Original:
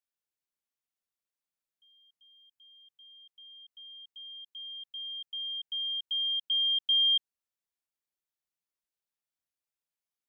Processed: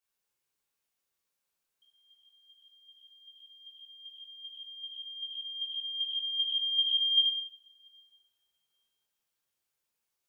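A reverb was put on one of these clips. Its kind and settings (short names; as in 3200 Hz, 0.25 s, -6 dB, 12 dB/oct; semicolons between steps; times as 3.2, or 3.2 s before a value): two-slope reverb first 0.61 s, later 2.2 s, from -26 dB, DRR -7.5 dB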